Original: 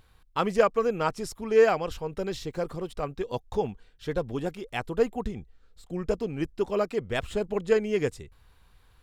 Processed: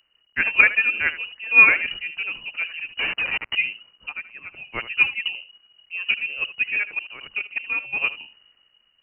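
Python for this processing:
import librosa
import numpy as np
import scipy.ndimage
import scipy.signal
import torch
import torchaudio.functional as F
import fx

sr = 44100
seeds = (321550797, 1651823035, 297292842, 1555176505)

p1 = fx.highpass(x, sr, hz=910.0, slope=6, at=(4.09, 4.54))
p2 = p1 + fx.echo_single(p1, sr, ms=77, db=-14.0, dry=0)
p3 = fx.quant_companded(p2, sr, bits=2, at=(2.99, 3.55))
p4 = fx.level_steps(p3, sr, step_db=13, at=(6.78, 7.98))
p5 = fx.dmg_crackle(p4, sr, seeds[0], per_s=290.0, level_db=-47.0)
p6 = fx.freq_invert(p5, sr, carrier_hz=2900)
p7 = fx.band_widen(p6, sr, depth_pct=40)
y = p7 * 10.0 ** (3.0 / 20.0)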